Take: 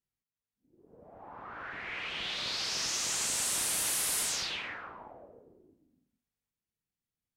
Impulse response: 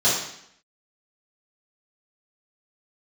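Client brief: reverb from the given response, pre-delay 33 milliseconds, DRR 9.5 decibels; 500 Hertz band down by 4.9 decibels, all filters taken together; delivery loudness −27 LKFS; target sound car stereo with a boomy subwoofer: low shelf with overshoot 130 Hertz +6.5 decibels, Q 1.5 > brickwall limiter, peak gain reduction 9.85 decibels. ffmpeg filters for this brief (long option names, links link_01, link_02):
-filter_complex "[0:a]equalizer=frequency=500:width_type=o:gain=-6,asplit=2[link_01][link_02];[1:a]atrim=start_sample=2205,adelay=33[link_03];[link_02][link_03]afir=irnorm=-1:irlink=0,volume=-26.5dB[link_04];[link_01][link_04]amix=inputs=2:normalize=0,lowshelf=frequency=130:width_type=q:width=1.5:gain=6.5,volume=10.5dB,alimiter=limit=-20dB:level=0:latency=1"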